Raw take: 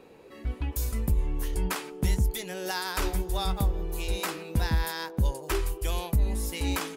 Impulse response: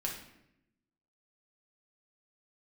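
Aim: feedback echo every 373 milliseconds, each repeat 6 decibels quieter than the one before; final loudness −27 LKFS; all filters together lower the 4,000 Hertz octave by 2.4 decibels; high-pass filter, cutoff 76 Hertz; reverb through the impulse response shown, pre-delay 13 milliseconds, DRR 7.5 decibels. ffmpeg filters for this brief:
-filter_complex "[0:a]highpass=76,equalizer=frequency=4000:width_type=o:gain=-3,aecho=1:1:373|746|1119|1492|1865|2238:0.501|0.251|0.125|0.0626|0.0313|0.0157,asplit=2[link_01][link_02];[1:a]atrim=start_sample=2205,adelay=13[link_03];[link_02][link_03]afir=irnorm=-1:irlink=0,volume=-10dB[link_04];[link_01][link_04]amix=inputs=2:normalize=0,volume=4dB"

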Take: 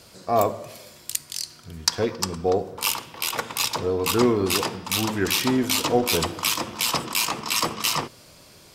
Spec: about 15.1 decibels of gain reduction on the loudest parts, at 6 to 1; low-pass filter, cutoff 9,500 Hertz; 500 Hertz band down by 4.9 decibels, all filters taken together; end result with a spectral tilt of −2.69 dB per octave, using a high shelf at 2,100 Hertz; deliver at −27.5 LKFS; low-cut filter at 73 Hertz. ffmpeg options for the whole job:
ffmpeg -i in.wav -af "highpass=73,lowpass=9500,equalizer=frequency=500:width_type=o:gain=-7,highshelf=frequency=2100:gain=8.5,acompressor=threshold=-30dB:ratio=6,volume=5dB" out.wav

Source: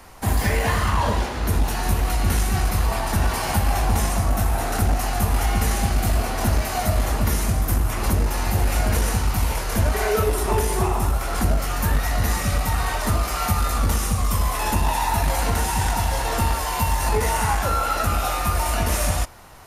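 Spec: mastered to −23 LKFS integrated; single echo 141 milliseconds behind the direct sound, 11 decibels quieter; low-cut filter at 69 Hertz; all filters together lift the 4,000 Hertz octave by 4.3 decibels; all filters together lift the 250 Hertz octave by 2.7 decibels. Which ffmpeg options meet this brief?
ffmpeg -i in.wav -af "highpass=69,equalizer=frequency=250:width_type=o:gain=3.5,equalizer=frequency=4000:width_type=o:gain=5.5,aecho=1:1:141:0.282,volume=-0.5dB" out.wav

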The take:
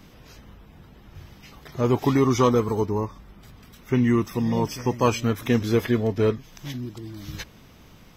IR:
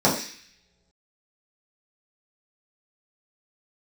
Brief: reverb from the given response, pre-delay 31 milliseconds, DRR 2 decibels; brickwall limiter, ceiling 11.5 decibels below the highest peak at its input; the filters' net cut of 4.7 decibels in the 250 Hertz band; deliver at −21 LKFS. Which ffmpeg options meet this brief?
-filter_complex "[0:a]equalizer=frequency=250:width_type=o:gain=-5.5,alimiter=limit=-19dB:level=0:latency=1,asplit=2[link_01][link_02];[1:a]atrim=start_sample=2205,adelay=31[link_03];[link_02][link_03]afir=irnorm=-1:irlink=0,volume=-20.5dB[link_04];[link_01][link_04]amix=inputs=2:normalize=0,volume=4.5dB"

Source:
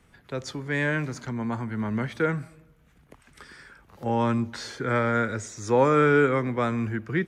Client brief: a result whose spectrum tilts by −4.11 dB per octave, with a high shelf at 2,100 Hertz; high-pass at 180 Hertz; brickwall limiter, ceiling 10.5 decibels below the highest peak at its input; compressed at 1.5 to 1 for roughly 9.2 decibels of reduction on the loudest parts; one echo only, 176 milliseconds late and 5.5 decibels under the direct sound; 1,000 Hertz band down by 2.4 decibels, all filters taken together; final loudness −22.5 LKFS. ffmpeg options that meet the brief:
ffmpeg -i in.wav -af "highpass=180,equalizer=frequency=1000:width_type=o:gain=-5.5,highshelf=frequency=2100:gain=6.5,acompressor=threshold=-43dB:ratio=1.5,alimiter=level_in=6.5dB:limit=-24dB:level=0:latency=1,volume=-6.5dB,aecho=1:1:176:0.531,volume=16dB" out.wav

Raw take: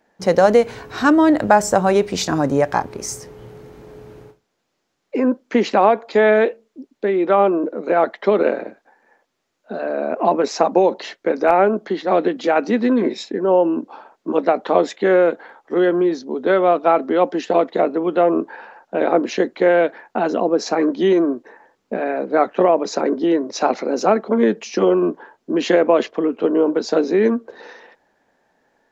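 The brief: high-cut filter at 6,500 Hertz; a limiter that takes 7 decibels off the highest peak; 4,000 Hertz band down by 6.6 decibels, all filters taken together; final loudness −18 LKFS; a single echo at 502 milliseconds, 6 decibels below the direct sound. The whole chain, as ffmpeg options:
ffmpeg -i in.wav -af "lowpass=6500,equalizer=frequency=4000:width_type=o:gain=-8,alimiter=limit=-8.5dB:level=0:latency=1,aecho=1:1:502:0.501,volume=1.5dB" out.wav

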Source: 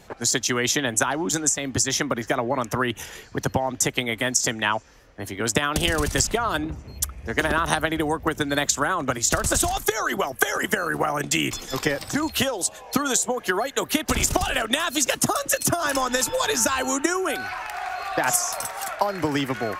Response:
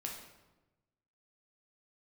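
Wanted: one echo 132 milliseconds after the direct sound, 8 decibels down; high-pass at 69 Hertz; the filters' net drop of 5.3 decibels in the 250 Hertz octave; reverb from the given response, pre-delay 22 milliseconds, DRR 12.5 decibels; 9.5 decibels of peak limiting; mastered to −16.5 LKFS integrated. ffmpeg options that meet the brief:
-filter_complex "[0:a]highpass=69,equalizer=frequency=250:width_type=o:gain=-7,alimiter=limit=-12.5dB:level=0:latency=1,aecho=1:1:132:0.398,asplit=2[link_01][link_02];[1:a]atrim=start_sample=2205,adelay=22[link_03];[link_02][link_03]afir=irnorm=-1:irlink=0,volume=-12dB[link_04];[link_01][link_04]amix=inputs=2:normalize=0,volume=8dB"

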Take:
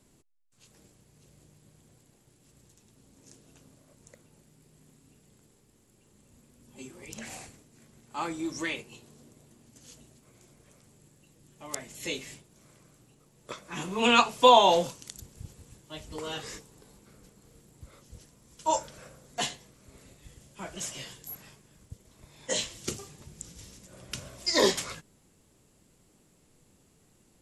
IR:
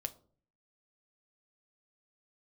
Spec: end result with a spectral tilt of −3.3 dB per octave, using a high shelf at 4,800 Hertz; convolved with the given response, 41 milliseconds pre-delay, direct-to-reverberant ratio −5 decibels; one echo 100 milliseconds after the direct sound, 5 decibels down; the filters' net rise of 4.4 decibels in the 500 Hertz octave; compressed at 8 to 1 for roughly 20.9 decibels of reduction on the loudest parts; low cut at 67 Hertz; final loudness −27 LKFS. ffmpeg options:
-filter_complex "[0:a]highpass=67,equalizer=frequency=500:width_type=o:gain=5,highshelf=frequency=4800:gain=7.5,acompressor=threshold=-32dB:ratio=8,aecho=1:1:100:0.562,asplit=2[link_01][link_02];[1:a]atrim=start_sample=2205,adelay=41[link_03];[link_02][link_03]afir=irnorm=-1:irlink=0,volume=6dB[link_04];[link_01][link_04]amix=inputs=2:normalize=0,volume=5dB"

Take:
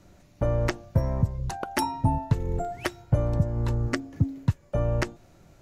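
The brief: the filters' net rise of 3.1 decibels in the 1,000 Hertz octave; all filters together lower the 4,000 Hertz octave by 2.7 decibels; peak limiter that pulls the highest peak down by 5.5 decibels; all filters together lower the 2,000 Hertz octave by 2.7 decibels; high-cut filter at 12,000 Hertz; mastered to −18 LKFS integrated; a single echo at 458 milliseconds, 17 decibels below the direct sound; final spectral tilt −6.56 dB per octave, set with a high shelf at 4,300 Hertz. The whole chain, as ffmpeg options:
ffmpeg -i in.wav -af "lowpass=12000,equalizer=frequency=1000:width_type=o:gain=4.5,equalizer=frequency=2000:width_type=o:gain=-4.5,equalizer=frequency=4000:width_type=o:gain=-7,highshelf=frequency=4300:gain=5.5,alimiter=limit=-16dB:level=0:latency=1,aecho=1:1:458:0.141,volume=11.5dB" out.wav

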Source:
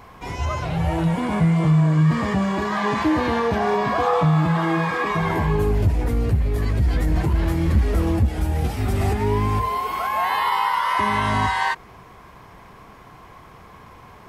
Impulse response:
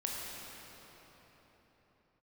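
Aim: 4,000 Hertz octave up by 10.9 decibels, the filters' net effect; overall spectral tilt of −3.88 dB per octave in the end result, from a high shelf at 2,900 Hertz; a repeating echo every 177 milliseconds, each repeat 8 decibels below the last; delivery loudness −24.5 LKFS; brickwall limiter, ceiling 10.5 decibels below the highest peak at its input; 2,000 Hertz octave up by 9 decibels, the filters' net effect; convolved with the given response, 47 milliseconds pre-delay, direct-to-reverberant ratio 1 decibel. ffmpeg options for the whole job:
-filter_complex "[0:a]equalizer=frequency=2000:width_type=o:gain=7.5,highshelf=frequency=2900:gain=4.5,equalizer=frequency=4000:width_type=o:gain=8,alimiter=limit=-15dB:level=0:latency=1,aecho=1:1:177|354|531|708|885:0.398|0.159|0.0637|0.0255|0.0102,asplit=2[link_01][link_02];[1:a]atrim=start_sample=2205,adelay=47[link_03];[link_02][link_03]afir=irnorm=-1:irlink=0,volume=-4.5dB[link_04];[link_01][link_04]amix=inputs=2:normalize=0,volume=-4.5dB"

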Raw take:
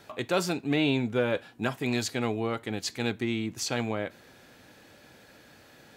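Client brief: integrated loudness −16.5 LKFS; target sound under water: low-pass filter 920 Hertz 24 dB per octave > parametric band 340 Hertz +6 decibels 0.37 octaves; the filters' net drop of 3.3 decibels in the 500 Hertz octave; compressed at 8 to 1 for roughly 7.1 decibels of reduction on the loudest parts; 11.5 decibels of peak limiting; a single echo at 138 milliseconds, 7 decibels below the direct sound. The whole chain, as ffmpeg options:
ffmpeg -i in.wav -af "equalizer=frequency=500:width_type=o:gain=-7,acompressor=threshold=-31dB:ratio=8,alimiter=level_in=7.5dB:limit=-24dB:level=0:latency=1,volume=-7.5dB,lowpass=frequency=920:width=0.5412,lowpass=frequency=920:width=1.3066,equalizer=frequency=340:width_type=o:width=0.37:gain=6,aecho=1:1:138:0.447,volume=25dB" out.wav

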